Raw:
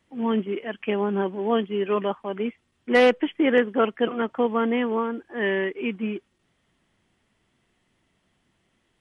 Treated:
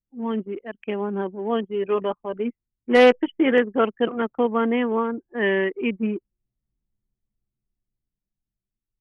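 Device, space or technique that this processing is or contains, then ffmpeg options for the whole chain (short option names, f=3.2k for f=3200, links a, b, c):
voice memo with heavy noise removal: -filter_complex "[0:a]asettb=1/sr,asplit=3[a][b][c];[a]atrim=end=1.654[d];[b]atrim=start=1.65:end=3.52,asetpts=PTS-STARTPTS,afade=t=in:d=0.004:c=qsin,afade=t=out:st=1.866:d=0.004:c=qsin,asplit=2[e][f];[f]adelay=12,volume=-8.5dB[g];[e][g]amix=inputs=2:normalize=0,atrim=end_sample=82467[h];[c]atrim=start=3.516[i];[d][h]acrossfade=d=0.004:c1=hsin:c2=qsin[j];[j][i]acrossfade=d=0.004:c1=qsin:c2=hsin,anlmdn=39.8,dynaudnorm=f=530:g=7:m=7.5dB,volume=-2.5dB"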